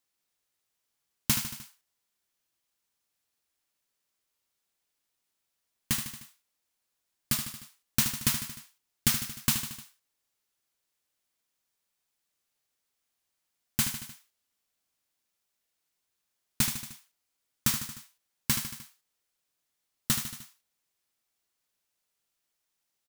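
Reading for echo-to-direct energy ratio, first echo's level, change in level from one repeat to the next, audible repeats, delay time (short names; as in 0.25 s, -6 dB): -7.0 dB, -9.0 dB, -4.5 dB, 4, 76 ms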